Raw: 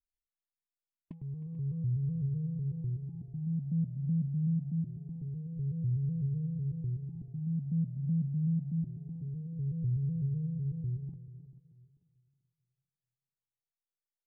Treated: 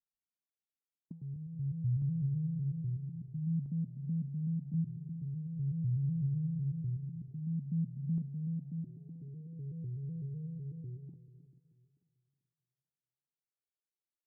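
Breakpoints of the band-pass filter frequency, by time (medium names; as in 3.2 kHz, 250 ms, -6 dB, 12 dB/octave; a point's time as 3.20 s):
band-pass filter, Q 1.3
190 Hz
from 1.36 s 110 Hz
from 2.02 s 160 Hz
from 3.66 s 270 Hz
from 4.74 s 160 Hz
from 7.31 s 230 Hz
from 8.18 s 320 Hz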